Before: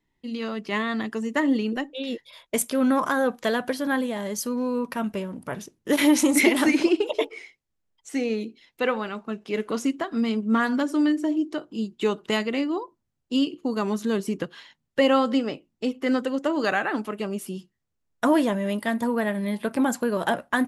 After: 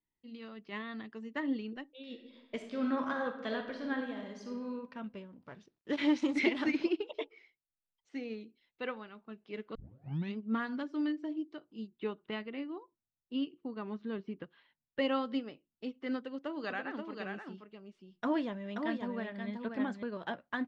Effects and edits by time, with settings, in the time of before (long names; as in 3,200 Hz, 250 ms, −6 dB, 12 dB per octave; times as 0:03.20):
0:02.04–0:04.69: thrown reverb, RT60 1.1 s, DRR 2 dB
0:05.44–0:06.84: log-companded quantiser 6 bits
0:09.75: tape start 0.61 s
0:11.87–0:14.99: low-pass filter 3,000 Hz
0:16.17–0:20.03: single-tap delay 530 ms −4 dB
whole clip: low-pass filter 4,600 Hz 24 dB per octave; dynamic equaliser 680 Hz, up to −3 dB, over −36 dBFS, Q 0.9; expander for the loud parts 1.5 to 1, over −35 dBFS; level −8.5 dB